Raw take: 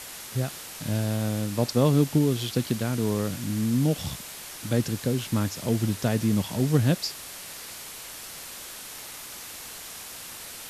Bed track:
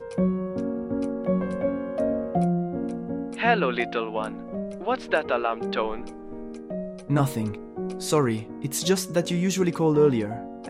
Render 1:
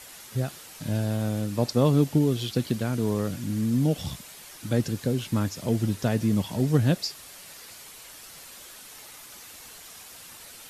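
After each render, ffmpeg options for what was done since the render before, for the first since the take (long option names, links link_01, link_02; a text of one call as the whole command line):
ffmpeg -i in.wav -af "afftdn=noise_reduction=7:noise_floor=-41" out.wav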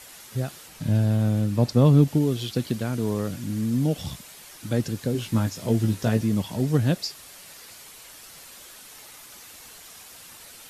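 ffmpeg -i in.wav -filter_complex "[0:a]asettb=1/sr,asplit=3[link_01][link_02][link_03];[link_01]atrim=end=0.684[link_04];[link_02]atrim=start=0.68:end=2.08,asetpts=PTS-STARTPTS,afade=type=in:duration=0.004:curve=qsin,afade=type=out:start_time=1.396:duration=0.004:curve=qsin,bass=frequency=250:gain=7,treble=frequency=4000:gain=-3[link_05];[link_03]atrim=start=2.076[link_06];[link_04][link_05]acrossfade=duration=0.004:curve1=hsin:curve2=qsin[link_07];[link_07][link_06]acrossfade=duration=0.004:curve1=qsin:curve2=hsin,asettb=1/sr,asplit=3[link_08][link_09][link_10];[link_08]atrim=end=5.134[link_11];[link_09]atrim=start=5.13:end=6.21,asetpts=PTS-STARTPTS,afade=type=in:duration=0.004:curve=qsin,afade=type=out:start_time=1.076:duration=0.004:curve=qsin,asplit=2[link_12][link_13];[link_13]adelay=18,volume=-5dB[link_14];[link_12][link_14]amix=inputs=2:normalize=0,atrim=end_sample=47628[link_15];[link_10]atrim=start=6.206[link_16];[link_11][link_15]acrossfade=duration=0.004:curve1=hsin:curve2=qsin[link_17];[link_17][link_16]acrossfade=duration=0.004:curve1=qsin:curve2=hsin" out.wav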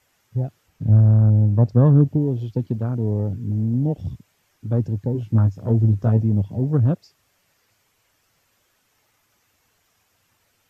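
ffmpeg -i in.wav -af "afwtdn=0.0224,equalizer=frequency=100:width_type=o:width=0.67:gain=10,equalizer=frequency=4000:width_type=o:width=0.67:gain=-6,equalizer=frequency=10000:width_type=o:width=0.67:gain=-12" out.wav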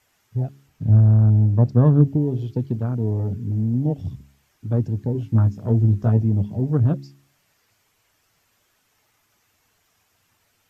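ffmpeg -i in.wav -af "bandreject=frequency=530:width=12,bandreject=frequency=68.96:width_type=h:width=4,bandreject=frequency=137.92:width_type=h:width=4,bandreject=frequency=206.88:width_type=h:width=4,bandreject=frequency=275.84:width_type=h:width=4,bandreject=frequency=344.8:width_type=h:width=4,bandreject=frequency=413.76:width_type=h:width=4" out.wav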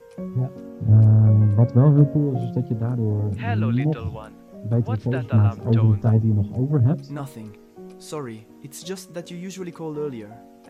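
ffmpeg -i in.wav -i bed.wav -filter_complex "[1:a]volume=-9.5dB[link_01];[0:a][link_01]amix=inputs=2:normalize=0" out.wav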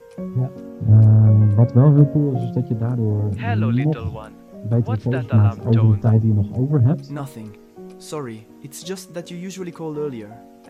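ffmpeg -i in.wav -af "volume=2.5dB" out.wav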